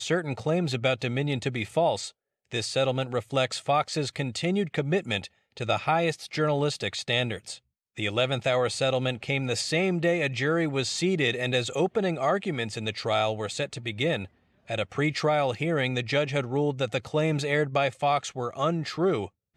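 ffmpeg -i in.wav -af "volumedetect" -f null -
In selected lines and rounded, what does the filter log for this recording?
mean_volume: -27.4 dB
max_volume: -10.3 dB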